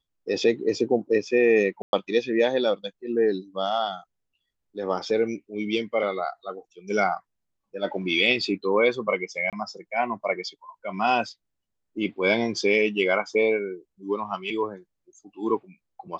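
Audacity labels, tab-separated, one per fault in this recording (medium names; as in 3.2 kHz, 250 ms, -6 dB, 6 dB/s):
1.820000	1.930000	dropout 111 ms
9.500000	9.530000	dropout 27 ms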